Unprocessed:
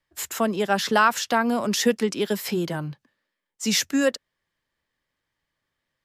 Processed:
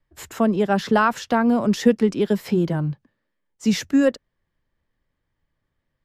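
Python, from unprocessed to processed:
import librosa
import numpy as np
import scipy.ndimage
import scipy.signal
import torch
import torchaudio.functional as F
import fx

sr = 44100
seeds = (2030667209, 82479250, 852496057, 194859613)

y = fx.tilt_eq(x, sr, slope=-3.0)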